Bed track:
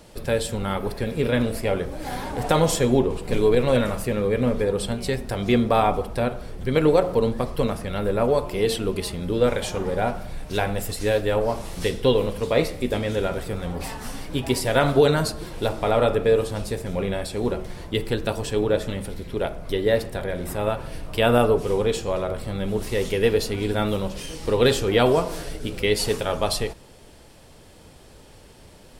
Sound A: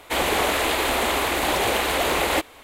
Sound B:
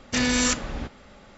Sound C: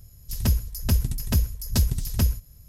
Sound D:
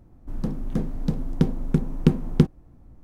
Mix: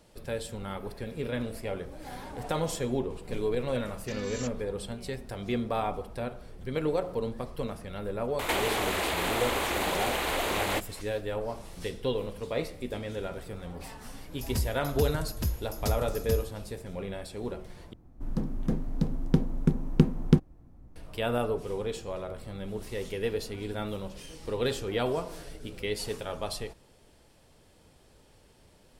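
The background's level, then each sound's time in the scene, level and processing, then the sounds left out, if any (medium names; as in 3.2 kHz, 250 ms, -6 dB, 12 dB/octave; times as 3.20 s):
bed track -11 dB
3.94 s: add B -16 dB + expander on every frequency bin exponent 1.5
8.39 s: add A -8 dB + three bands compressed up and down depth 100%
14.10 s: add C -8.5 dB
17.93 s: replace with D -3 dB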